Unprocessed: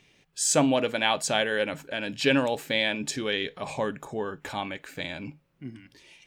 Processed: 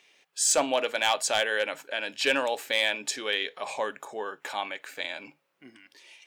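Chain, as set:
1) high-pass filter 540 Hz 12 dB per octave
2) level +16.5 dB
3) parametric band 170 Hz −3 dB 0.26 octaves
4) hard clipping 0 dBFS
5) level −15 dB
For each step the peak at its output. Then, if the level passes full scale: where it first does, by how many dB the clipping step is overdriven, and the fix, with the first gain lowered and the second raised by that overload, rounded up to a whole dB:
−9.0, +7.5, +7.5, 0.0, −15.0 dBFS
step 2, 7.5 dB
step 2 +8.5 dB, step 5 −7 dB

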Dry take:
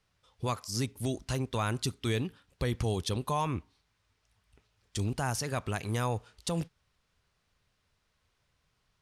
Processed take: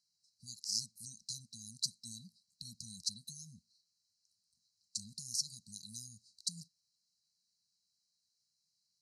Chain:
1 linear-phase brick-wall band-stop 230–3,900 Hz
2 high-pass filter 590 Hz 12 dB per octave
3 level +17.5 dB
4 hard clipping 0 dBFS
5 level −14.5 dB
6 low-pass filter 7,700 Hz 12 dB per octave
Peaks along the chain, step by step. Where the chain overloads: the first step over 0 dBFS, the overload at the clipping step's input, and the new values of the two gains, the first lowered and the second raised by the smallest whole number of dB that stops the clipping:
−19.5, −20.5, −3.0, −3.0, −17.5, −20.5 dBFS
no step passes full scale

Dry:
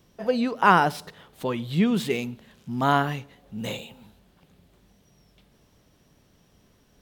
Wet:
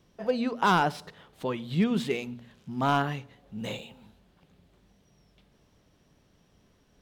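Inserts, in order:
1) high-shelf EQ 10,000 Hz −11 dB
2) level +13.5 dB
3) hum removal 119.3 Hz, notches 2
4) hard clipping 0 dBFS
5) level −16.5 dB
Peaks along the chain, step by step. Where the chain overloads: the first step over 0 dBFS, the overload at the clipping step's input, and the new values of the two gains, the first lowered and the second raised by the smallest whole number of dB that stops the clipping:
−4.5, +9.0, +9.0, 0.0, −16.5 dBFS
step 2, 9.0 dB
step 2 +4.5 dB, step 5 −7.5 dB

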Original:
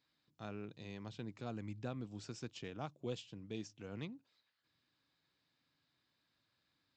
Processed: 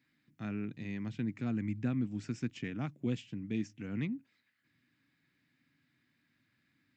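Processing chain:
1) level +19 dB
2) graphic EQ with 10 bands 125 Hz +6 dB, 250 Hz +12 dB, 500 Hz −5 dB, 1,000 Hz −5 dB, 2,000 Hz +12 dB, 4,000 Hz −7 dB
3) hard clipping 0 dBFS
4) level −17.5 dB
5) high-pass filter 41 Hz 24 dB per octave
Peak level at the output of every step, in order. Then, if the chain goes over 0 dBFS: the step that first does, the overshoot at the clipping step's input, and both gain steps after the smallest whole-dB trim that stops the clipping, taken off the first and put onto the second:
−9.5, −5.5, −5.5, −23.0, −22.5 dBFS
no step passes full scale

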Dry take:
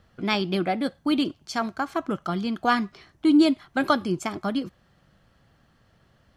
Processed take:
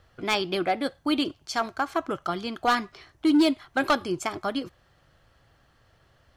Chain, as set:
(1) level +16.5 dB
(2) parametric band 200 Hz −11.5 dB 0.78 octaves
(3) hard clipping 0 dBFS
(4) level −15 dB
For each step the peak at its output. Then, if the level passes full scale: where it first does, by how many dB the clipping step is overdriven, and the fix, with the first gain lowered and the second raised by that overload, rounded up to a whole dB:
+9.5, +9.5, 0.0, −15.0 dBFS
step 1, 9.5 dB
step 1 +6.5 dB, step 4 −5 dB

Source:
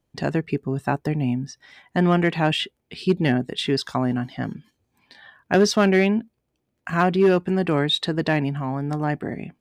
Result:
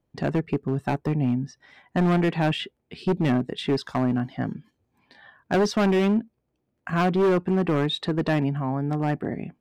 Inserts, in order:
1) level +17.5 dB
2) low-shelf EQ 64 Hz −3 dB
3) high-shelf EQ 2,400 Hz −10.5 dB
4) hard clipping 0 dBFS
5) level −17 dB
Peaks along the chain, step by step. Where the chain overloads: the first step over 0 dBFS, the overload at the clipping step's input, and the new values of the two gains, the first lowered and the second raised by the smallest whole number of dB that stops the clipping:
+10.5, +10.5, +9.5, 0.0, −17.0 dBFS
step 1, 9.5 dB
step 1 +7.5 dB, step 5 −7 dB

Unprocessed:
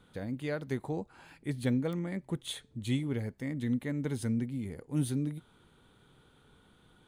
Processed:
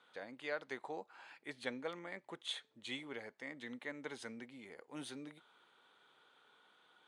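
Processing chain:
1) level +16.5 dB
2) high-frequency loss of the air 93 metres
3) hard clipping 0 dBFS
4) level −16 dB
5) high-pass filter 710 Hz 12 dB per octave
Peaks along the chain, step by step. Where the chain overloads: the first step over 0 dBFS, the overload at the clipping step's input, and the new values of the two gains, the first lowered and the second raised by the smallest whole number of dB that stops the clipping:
−2.0, −2.0, −2.0, −18.0, −23.0 dBFS
no step passes full scale

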